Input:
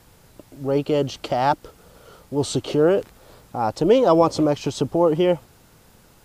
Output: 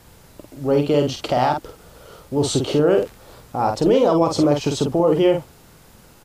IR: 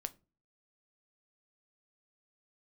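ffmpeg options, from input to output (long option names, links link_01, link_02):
-filter_complex "[0:a]alimiter=limit=-12.5dB:level=0:latency=1:release=39,asplit=2[link_01][link_02];[link_02]adelay=48,volume=-5dB[link_03];[link_01][link_03]amix=inputs=2:normalize=0,volume=3dB"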